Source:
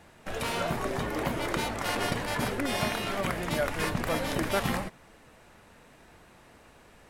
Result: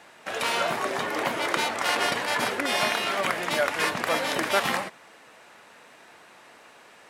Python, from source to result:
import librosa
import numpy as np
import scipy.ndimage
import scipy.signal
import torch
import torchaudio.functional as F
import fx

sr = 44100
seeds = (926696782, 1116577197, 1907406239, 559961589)

y = fx.weighting(x, sr, curve='A')
y = y * 10.0 ** (6.0 / 20.0)